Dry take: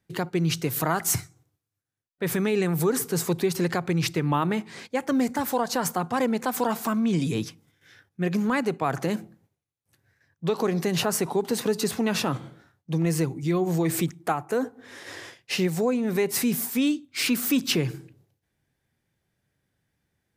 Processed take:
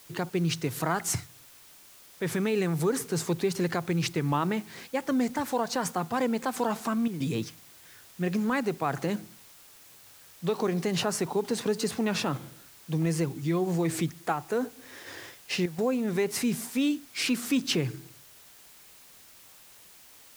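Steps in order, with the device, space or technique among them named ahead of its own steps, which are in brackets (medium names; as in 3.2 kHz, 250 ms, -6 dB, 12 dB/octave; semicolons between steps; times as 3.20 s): worn cassette (low-pass 9.5 kHz; wow and flutter; level dips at 7.08/15.66 s, 122 ms -9 dB; white noise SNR 23 dB); trim -3 dB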